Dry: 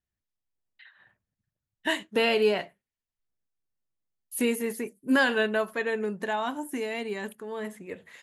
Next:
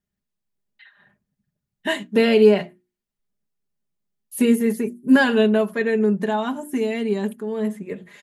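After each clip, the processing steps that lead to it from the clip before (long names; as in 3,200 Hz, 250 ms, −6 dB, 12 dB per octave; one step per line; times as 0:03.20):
parametric band 170 Hz +10.5 dB 2.7 octaves
mains-hum notches 60/120/180/240/300/360 Hz
comb filter 4.9 ms, depth 58%
level +1 dB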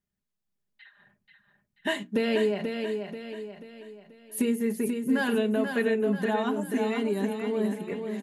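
downward compressor, threshold −19 dBFS, peak gain reduction 10.5 dB
on a send: repeating echo 485 ms, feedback 44%, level −6 dB
on the sum: level −3.5 dB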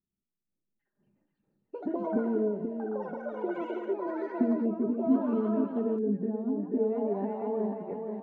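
echo through a band-pass that steps 179 ms, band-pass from 830 Hz, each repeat 1.4 octaves, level −2.5 dB
low-pass filter sweep 330 Hz → 780 Hz, 0:06.61–0:07.20
delay with pitch and tempo change per echo 496 ms, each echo +7 semitones, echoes 3, each echo −6 dB
level −5.5 dB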